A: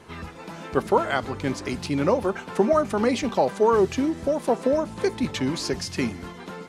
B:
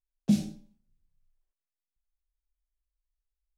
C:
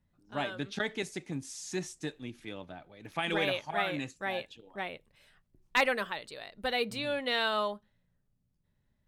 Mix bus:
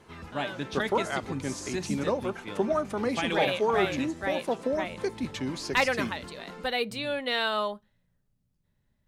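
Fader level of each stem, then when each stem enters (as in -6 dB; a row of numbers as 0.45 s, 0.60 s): -7.0 dB, -10.5 dB, +2.0 dB; 0.00 s, 1.60 s, 0.00 s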